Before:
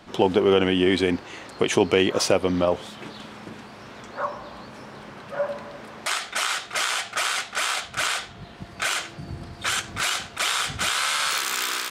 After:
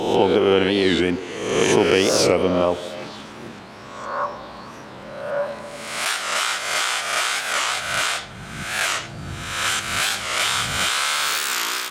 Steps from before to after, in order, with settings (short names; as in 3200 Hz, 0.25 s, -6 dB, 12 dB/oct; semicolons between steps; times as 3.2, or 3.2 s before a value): spectral swells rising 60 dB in 1.06 s; delay with a stepping band-pass 0.151 s, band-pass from 390 Hz, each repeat 0.7 oct, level -12 dB; record warp 45 rpm, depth 160 cents